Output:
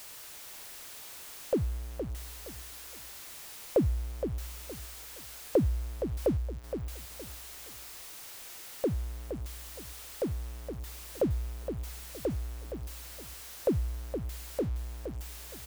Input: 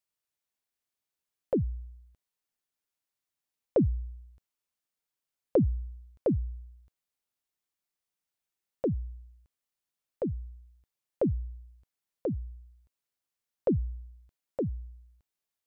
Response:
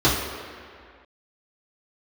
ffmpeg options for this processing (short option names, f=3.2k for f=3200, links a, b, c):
-filter_complex "[0:a]aeval=exprs='val(0)+0.5*0.0112*sgn(val(0))':c=same,equalizer=f=180:t=o:w=1.1:g=-6.5,asplit=2[a][b];[b]aecho=0:1:467|934|1401:0.376|0.109|0.0316[c];[a][c]amix=inputs=2:normalize=0"